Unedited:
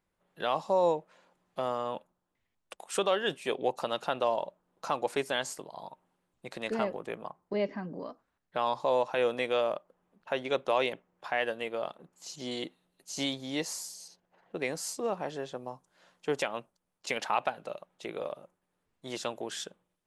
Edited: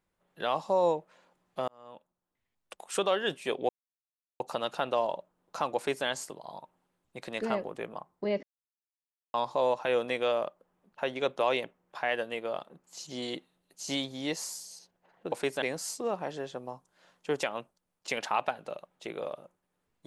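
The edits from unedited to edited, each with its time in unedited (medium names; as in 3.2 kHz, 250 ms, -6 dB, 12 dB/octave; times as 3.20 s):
1.68–2.78 s: fade in
3.69 s: insert silence 0.71 s
5.05–5.35 s: copy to 14.61 s
7.72–8.63 s: mute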